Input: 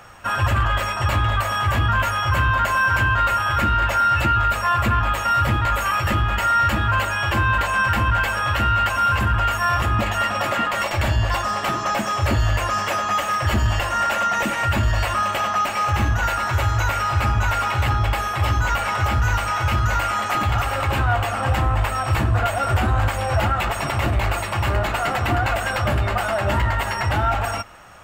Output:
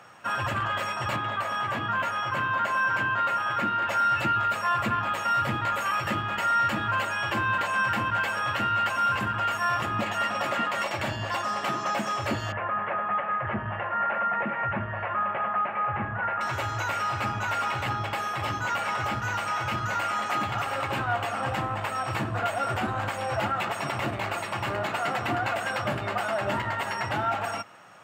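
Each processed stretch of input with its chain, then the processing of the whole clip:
1.16–3.88 s: high-pass 130 Hz + treble shelf 4.2 kHz -7 dB
12.52–16.41 s: inverse Chebyshev low-pass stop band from 5.3 kHz, stop band 50 dB + peaking EQ 290 Hz -11.5 dB 0.26 oct
whole clip: high-pass 130 Hz 24 dB/octave; treble shelf 10 kHz -8.5 dB; trim -5.5 dB

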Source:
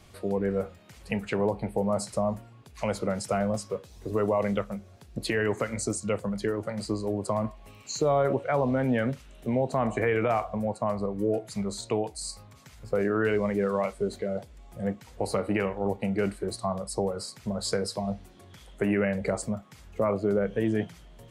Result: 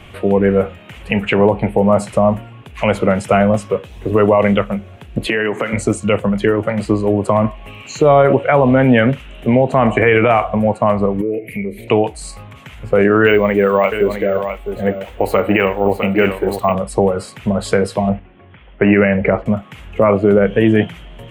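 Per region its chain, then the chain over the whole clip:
5.27–5.73 s: high-pass 140 Hz 24 dB/octave + compression 4:1, threshold -29 dBFS
11.21–11.88 s: FFT filter 150 Hz 0 dB, 290 Hz +7 dB, 460 Hz +7 dB, 660 Hz -6 dB, 940 Hz -21 dB, 1.4 kHz -19 dB, 2.2 kHz +14 dB, 3.7 kHz -16 dB, 7.6 kHz -21 dB, 12 kHz +13 dB + compression 2:1, threshold -42 dBFS
13.26–16.75 s: peaking EQ 140 Hz -10 dB 0.87 oct + delay 657 ms -9 dB + careless resampling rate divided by 2×, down none, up hold
18.09–19.46 s: inverse Chebyshev low-pass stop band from 10 kHz, stop band 70 dB + gate -44 dBFS, range -7 dB
whole clip: resonant high shelf 3.7 kHz -8.5 dB, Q 3; loudness maximiser +15.5 dB; trim -1 dB

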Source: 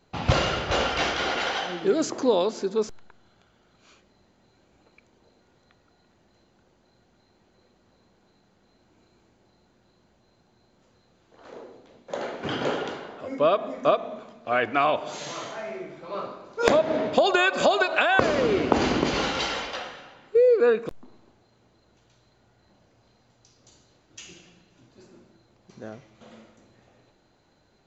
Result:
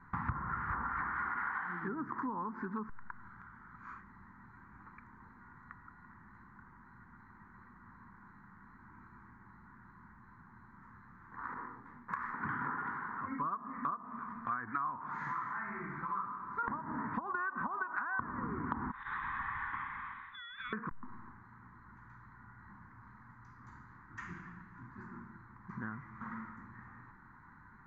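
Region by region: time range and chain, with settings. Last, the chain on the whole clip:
11.54–12.34 s: self-modulated delay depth 0.99 ms + detune thickener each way 31 cents
18.91–20.73 s: frequency inversion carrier 3.9 kHz + compression 10:1, threshold -29 dBFS
whole clip: low-pass that closes with the level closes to 1 kHz, closed at -19.5 dBFS; FFT filter 230 Hz 0 dB, 620 Hz -28 dB, 990 Hz +9 dB, 1.9 kHz +5 dB, 2.8 kHz -29 dB; compression 4:1, threshold -45 dBFS; trim +6.5 dB

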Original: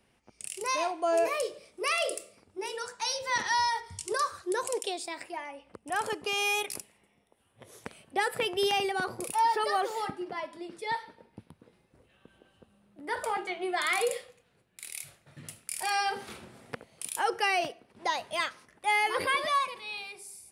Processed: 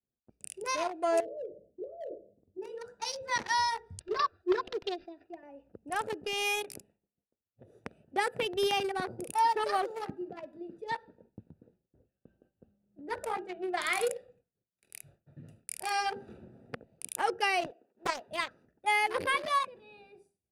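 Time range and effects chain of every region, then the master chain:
1.20–2.62 s: steep low-pass 710 Hz 48 dB/octave + compression 4:1, threshold -32 dBFS
4.00–5.43 s: comb 2.8 ms, depth 95% + careless resampling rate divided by 4×, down none, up filtered + upward expansion, over -45 dBFS
17.66–18.28 s: high-pass 380 Hz + loudspeaker Doppler distortion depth 0.49 ms
whole clip: local Wiener filter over 41 samples; expander -58 dBFS

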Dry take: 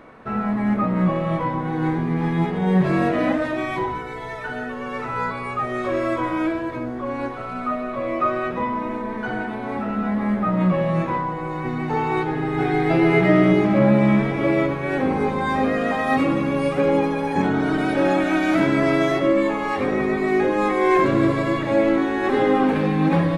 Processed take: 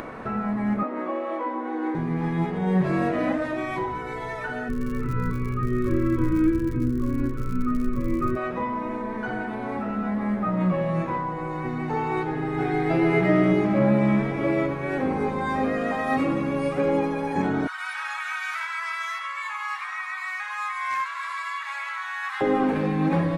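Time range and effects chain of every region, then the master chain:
0.83–1.95 s: steep high-pass 230 Hz 96 dB/octave + treble shelf 3.7 kHz -8.5 dB
4.68–8.35 s: tilt EQ -4.5 dB/octave + crackle 81 per s -28 dBFS + Butterworth band-stop 720 Hz, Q 0.89
17.67–22.41 s: steep high-pass 1 kHz 48 dB/octave + overload inside the chain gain 16.5 dB
whole clip: peaking EQ 3.4 kHz -3.5 dB 0.77 oct; upward compressor, threshold -21 dBFS; trim -4 dB

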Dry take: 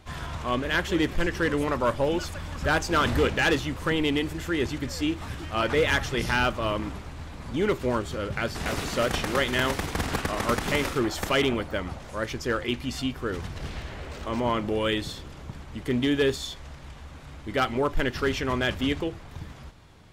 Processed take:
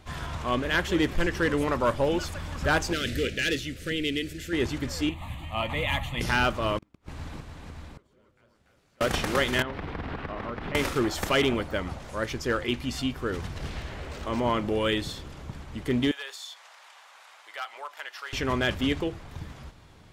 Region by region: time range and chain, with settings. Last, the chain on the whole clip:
2.93–4.53 s: Butterworth band-stop 950 Hz, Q 0.7 + bass shelf 430 Hz -6.5 dB
5.09–6.21 s: peaking EQ 9.5 kHz -3 dB 0.4 oct + static phaser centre 1.5 kHz, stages 6
6.78–9.01 s: inverted gate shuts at -27 dBFS, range -38 dB + multi-tap echo 43/162/299/479/571 ms -12/-11.5/-4.5/-10/-5.5 dB
9.62–10.75 s: compression 10:1, threshold -28 dBFS + distance through air 370 m
16.11–18.33 s: high-pass 740 Hz 24 dB/octave + compression 1.5:1, threshold -47 dBFS
whole clip: none

